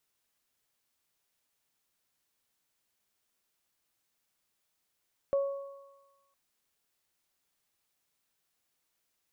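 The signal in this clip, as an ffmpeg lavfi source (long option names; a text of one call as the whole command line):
ffmpeg -f lavfi -i "aevalsrc='0.0708*pow(10,-3*t/1.04)*sin(2*PI*555*t)+0.00891*pow(10,-3*t/1.8)*sin(2*PI*1110*t)':duration=1.01:sample_rate=44100" out.wav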